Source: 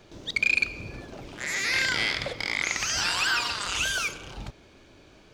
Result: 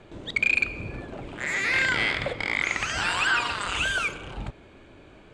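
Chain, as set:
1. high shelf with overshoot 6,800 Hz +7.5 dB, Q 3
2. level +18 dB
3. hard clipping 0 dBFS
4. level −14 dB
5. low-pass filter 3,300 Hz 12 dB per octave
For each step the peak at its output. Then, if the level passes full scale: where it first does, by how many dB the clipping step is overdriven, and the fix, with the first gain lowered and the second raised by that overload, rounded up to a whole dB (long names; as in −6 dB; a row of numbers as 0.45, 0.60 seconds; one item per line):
−13.0, +5.0, 0.0, −14.0, −13.5 dBFS
step 2, 5.0 dB
step 2 +13 dB, step 4 −9 dB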